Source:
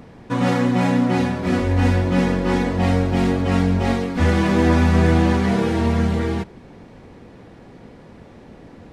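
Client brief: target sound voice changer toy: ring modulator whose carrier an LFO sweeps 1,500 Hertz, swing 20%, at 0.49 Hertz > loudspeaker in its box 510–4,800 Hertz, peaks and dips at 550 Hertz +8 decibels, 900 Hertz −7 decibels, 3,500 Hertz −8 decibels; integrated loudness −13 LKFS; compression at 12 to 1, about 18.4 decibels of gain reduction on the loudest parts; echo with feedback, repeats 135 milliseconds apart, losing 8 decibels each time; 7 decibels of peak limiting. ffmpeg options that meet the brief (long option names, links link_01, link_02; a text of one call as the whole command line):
ffmpeg -i in.wav -af "acompressor=threshold=-31dB:ratio=12,alimiter=level_in=4.5dB:limit=-24dB:level=0:latency=1,volume=-4.5dB,aecho=1:1:135|270|405|540|675:0.398|0.159|0.0637|0.0255|0.0102,aeval=exprs='val(0)*sin(2*PI*1500*n/s+1500*0.2/0.49*sin(2*PI*0.49*n/s))':channel_layout=same,highpass=510,equalizer=frequency=550:width_type=q:width=4:gain=8,equalizer=frequency=900:width_type=q:width=4:gain=-7,equalizer=frequency=3500:width_type=q:width=4:gain=-8,lowpass=frequency=4800:width=0.5412,lowpass=frequency=4800:width=1.3066,volume=26dB" out.wav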